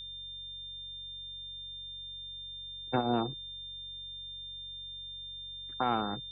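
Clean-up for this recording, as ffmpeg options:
-af "bandreject=f=46.3:t=h:w=4,bandreject=f=92.6:t=h:w=4,bandreject=f=138.9:t=h:w=4,bandreject=f=3.6k:w=30"

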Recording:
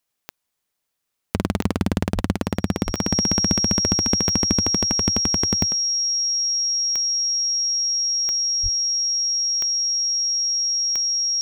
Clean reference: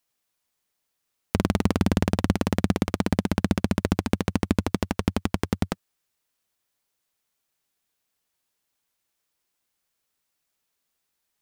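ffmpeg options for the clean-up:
-filter_complex "[0:a]adeclick=t=4,bandreject=f=5.6k:w=30,asplit=3[a][b][c];[a]afade=t=out:st=2.14:d=0.02[d];[b]highpass=f=140:w=0.5412,highpass=f=140:w=1.3066,afade=t=in:st=2.14:d=0.02,afade=t=out:st=2.26:d=0.02[e];[c]afade=t=in:st=2.26:d=0.02[f];[d][e][f]amix=inputs=3:normalize=0,asplit=3[g][h][i];[g]afade=t=out:st=2.85:d=0.02[j];[h]highpass=f=140:w=0.5412,highpass=f=140:w=1.3066,afade=t=in:st=2.85:d=0.02,afade=t=out:st=2.97:d=0.02[k];[i]afade=t=in:st=2.97:d=0.02[l];[j][k][l]amix=inputs=3:normalize=0,asplit=3[m][n][o];[m]afade=t=out:st=8.62:d=0.02[p];[n]highpass=f=140:w=0.5412,highpass=f=140:w=1.3066,afade=t=in:st=8.62:d=0.02,afade=t=out:st=8.74:d=0.02[q];[o]afade=t=in:st=8.74:d=0.02[r];[p][q][r]amix=inputs=3:normalize=0,asetnsamples=n=441:p=0,asendcmd='5.67 volume volume 9dB',volume=0dB"

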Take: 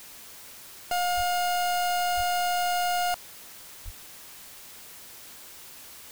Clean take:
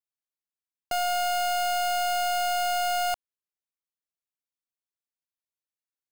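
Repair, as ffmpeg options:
-filter_complex "[0:a]asplit=3[a][b][c];[a]afade=t=out:st=1.16:d=0.02[d];[b]highpass=f=140:w=0.5412,highpass=f=140:w=1.3066,afade=t=in:st=1.16:d=0.02,afade=t=out:st=1.28:d=0.02[e];[c]afade=t=in:st=1.28:d=0.02[f];[d][e][f]amix=inputs=3:normalize=0,asplit=3[g][h][i];[g]afade=t=out:st=2.16:d=0.02[j];[h]highpass=f=140:w=0.5412,highpass=f=140:w=1.3066,afade=t=in:st=2.16:d=0.02,afade=t=out:st=2.28:d=0.02[k];[i]afade=t=in:st=2.28:d=0.02[l];[j][k][l]amix=inputs=3:normalize=0,asplit=3[m][n][o];[m]afade=t=out:st=3.84:d=0.02[p];[n]highpass=f=140:w=0.5412,highpass=f=140:w=1.3066,afade=t=in:st=3.84:d=0.02,afade=t=out:st=3.96:d=0.02[q];[o]afade=t=in:st=3.96:d=0.02[r];[p][q][r]amix=inputs=3:normalize=0,afwtdn=0.005"

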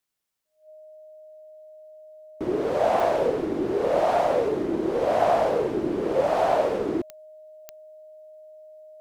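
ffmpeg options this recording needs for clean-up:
-af "adeclick=t=4,bandreject=f=620:w=30"

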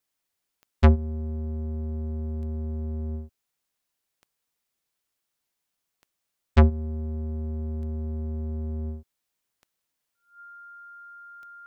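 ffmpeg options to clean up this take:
-af "adeclick=t=4,bandreject=f=1.4k:w=30"

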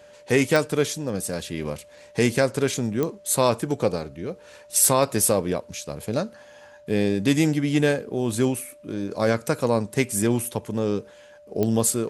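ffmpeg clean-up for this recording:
-af "adeclick=t=4,bandreject=f=590:w=30"

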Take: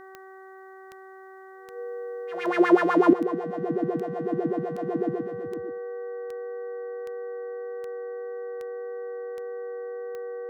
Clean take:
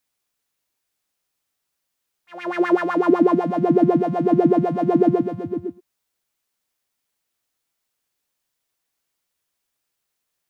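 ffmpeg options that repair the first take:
-af "adeclick=t=4,bandreject=f=381.7:t=h:w=4,bandreject=f=763.4:t=h:w=4,bandreject=f=1.1451k:t=h:w=4,bandreject=f=1.5268k:t=h:w=4,bandreject=f=1.9085k:t=h:w=4,bandreject=f=480:w=30,asetnsamples=n=441:p=0,asendcmd='3.13 volume volume 11.5dB',volume=0dB"

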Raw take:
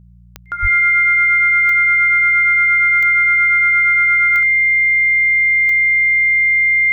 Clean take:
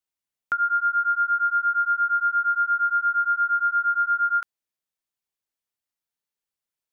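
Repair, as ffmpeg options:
-filter_complex "[0:a]adeclick=t=4,bandreject=f=59:t=h:w=4,bandreject=f=118:t=h:w=4,bandreject=f=177:t=h:w=4,bandreject=f=2.1k:w=30,asplit=3[a][b][c];[a]afade=t=out:st=0.61:d=0.02[d];[b]highpass=f=140:w=0.5412,highpass=f=140:w=1.3066,afade=t=in:st=0.61:d=0.02,afade=t=out:st=0.73:d=0.02[e];[c]afade=t=in:st=0.73:d=0.02[f];[d][e][f]amix=inputs=3:normalize=0"

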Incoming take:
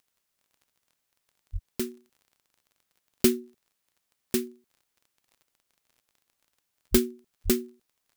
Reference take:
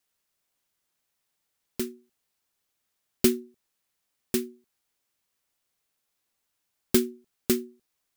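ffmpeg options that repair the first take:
-filter_complex "[0:a]adeclick=t=4,asplit=3[a][b][c];[a]afade=t=out:st=1.52:d=0.02[d];[b]highpass=f=140:w=0.5412,highpass=f=140:w=1.3066,afade=t=in:st=1.52:d=0.02,afade=t=out:st=1.64:d=0.02[e];[c]afade=t=in:st=1.64:d=0.02[f];[d][e][f]amix=inputs=3:normalize=0,asplit=3[g][h][i];[g]afade=t=out:st=6.91:d=0.02[j];[h]highpass=f=140:w=0.5412,highpass=f=140:w=1.3066,afade=t=in:st=6.91:d=0.02,afade=t=out:st=7.03:d=0.02[k];[i]afade=t=in:st=7.03:d=0.02[l];[j][k][l]amix=inputs=3:normalize=0,asplit=3[m][n][o];[m]afade=t=out:st=7.44:d=0.02[p];[n]highpass=f=140:w=0.5412,highpass=f=140:w=1.3066,afade=t=in:st=7.44:d=0.02,afade=t=out:st=7.56:d=0.02[q];[o]afade=t=in:st=7.56:d=0.02[r];[p][q][r]amix=inputs=3:normalize=0"

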